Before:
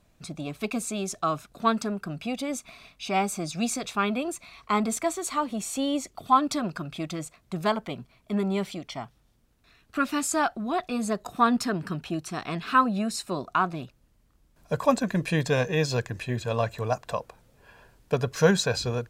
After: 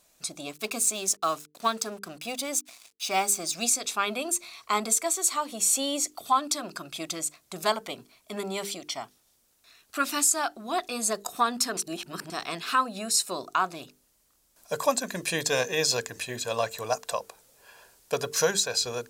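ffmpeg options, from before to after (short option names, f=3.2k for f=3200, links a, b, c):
-filter_complex "[0:a]asettb=1/sr,asplit=3[a][b][c];[a]atrim=end=0.514[d];[b]atrim=start=0.51:end=3.63,asetpts=PTS-STARTPTS,afade=t=in:d=0.004:c=qsin,afade=t=out:st=3.116:d=0.004:c=qsin,aeval=exprs='sgn(val(0))*max(abs(val(0))-0.00355,0)':c=same[e];[c]atrim=start=3.626[f];[d][e]acrossfade=d=0.004:c1=hsin:c2=qsin[g];[g][f]acrossfade=d=0.004:c1=qsin:c2=hsin,asplit=3[h][i][j];[h]atrim=end=11.772[k];[i]atrim=start=11.768:end=12.302,asetpts=PTS-STARTPTS,areverse[l];[j]atrim=start=12.298[m];[k][l]acrossfade=d=0.004:c1=hsin:c2=hsin[n];[n][m]acrossfade=d=0.004:c1=hsin:c2=hsin,bass=f=250:g=-14,treble=f=4k:g=13,bandreject=f=50:t=h:w=6,bandreject=f=100:t=h:w=6,bandreject=f=150:t=h:w=6,bandreject=f=200:t=h:w=6,bandreject=f=250:t=h:w=6,bandreject=f=300:t=h:w=6,bandreject=f=350:t=h:w=6,bandreject=f=400:t=h:w=6,bandreject=f=450:t=h:w=6,alimiter=limit=-11.5dB:level=0:latency=1:release=419"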